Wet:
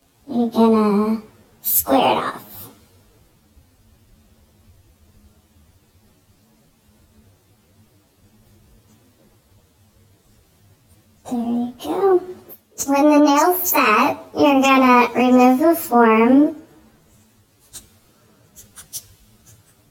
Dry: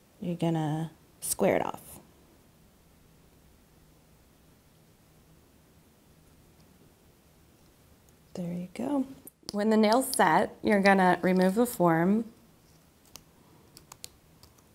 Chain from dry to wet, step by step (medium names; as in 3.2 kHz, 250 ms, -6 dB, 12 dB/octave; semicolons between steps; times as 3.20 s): frequency-domain pitch shifter +10.5 st; in parallel at 0 dB: compression, threshold -39 dBFS, peak gain reduction 19 dB; on the sum: speed mistake 45 rpm record played at 33 rpm; loudness maximiser +17.5 dB; three bands expanded up and down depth 40%; trim -5.5 dB